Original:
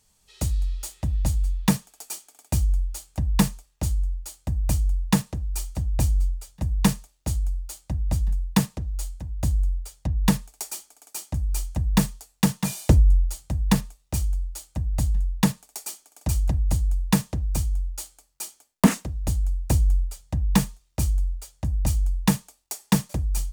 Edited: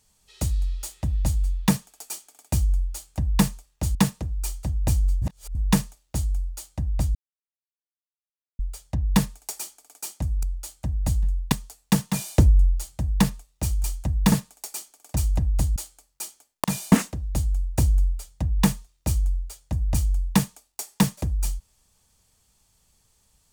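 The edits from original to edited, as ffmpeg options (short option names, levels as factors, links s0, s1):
-filter_complex "[0:a]asplit=13[s0][s1][s2][s3][s4][s5][s6][s7][s8][s9][s10][s11][s12];[s0]atrim=end=3.952[s13];[s1]atrim=start=5.068:end=6.342[s14];[s2]atrim=start=6.338:end=6.672,asetpts=PTS-STARTPTS,areverse[s15];[s3]atrim=start=6.668:end=8.27,asetpts=PTS-STARTPTS,afade=t=out:st=1.598:d=0.004:c=hsin[s16];[s4]atrim=start=8.27:end=9.71,asetpts=PTS-STARTPTS,volume=0[s17];[s5]atrim=start=9.71:end=11.552,asetpts=PTS-STARTPTS,afade=t=in:d=0.004:c=hsin[s18];[s6]atrim=start=14.348:end=15.442[s19];[s7]atrim=start=12.028:end=14.352[s20];[s8]atrim=start=11.548:end=12.032[s21];[s9]atrim=start=15.438:end=16.882[s22];[s10]atrim=start=17.958:end=18.842[s23];[s11]atrim=start=12.588:end=12.872[s24];[s12]atrim=start=18.838[s25];[s13][s14]acrossfade=d=0.004:c1=hsin:c2=hsin[s26];[s26][s15]acrossfade=d=0.004:c1=hsin:c2=hsin[s27];[s16][s17][s18]concat=n=3:v=0:a=1[s28];[s27][s28]acrossfade=d=0.004:c1=hsin:c2=hsin[s29];[s29][s19]acrossfade=d=0.004:c1=hsin:c2=hsin[s30];[s30][s20]acrossfade=d=0.004:c1=hsin:c2=hsin[s31];[s31][s21]acrossfade=d=0.004:c1=hsin:c2=hsin[s32];[s32][s22]acrossfade=d=0.004:c1=hsin:c2=hsin[s33];[s33][s23]acrossfade=d=0.004:c1=hsin:c2=hsin[s34];[s34][s24]acrossfade=d=0.004:c1=hsin:c2=hsin[s35];[s35][s25]acrossfade=d=0.004:c1=hsin:c2=hsin"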